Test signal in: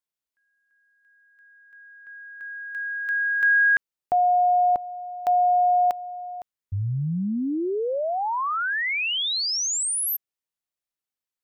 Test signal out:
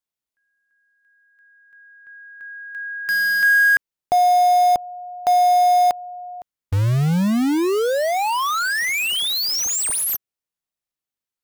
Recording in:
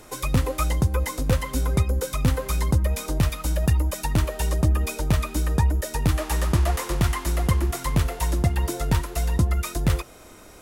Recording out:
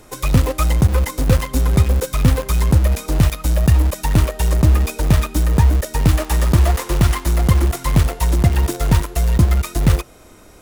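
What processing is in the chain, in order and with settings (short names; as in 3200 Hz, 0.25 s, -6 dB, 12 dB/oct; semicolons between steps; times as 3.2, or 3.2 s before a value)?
low shelf 370 Hz +4 dB; in parallel at -5 dB: bit-crush 4-bit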